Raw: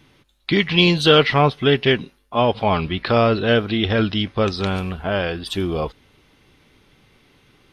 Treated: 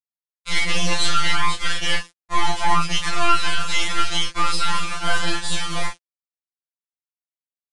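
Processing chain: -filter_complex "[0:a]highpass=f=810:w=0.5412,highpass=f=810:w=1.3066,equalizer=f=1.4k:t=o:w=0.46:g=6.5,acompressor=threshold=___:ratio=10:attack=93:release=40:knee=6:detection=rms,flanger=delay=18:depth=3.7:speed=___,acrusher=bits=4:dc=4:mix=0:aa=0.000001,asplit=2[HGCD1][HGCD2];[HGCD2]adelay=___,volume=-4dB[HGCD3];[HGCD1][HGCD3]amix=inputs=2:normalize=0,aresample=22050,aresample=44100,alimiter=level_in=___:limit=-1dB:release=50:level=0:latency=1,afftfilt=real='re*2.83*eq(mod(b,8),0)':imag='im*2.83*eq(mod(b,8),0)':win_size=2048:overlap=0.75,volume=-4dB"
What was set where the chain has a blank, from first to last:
-29dB, 0.69, 30, 19dB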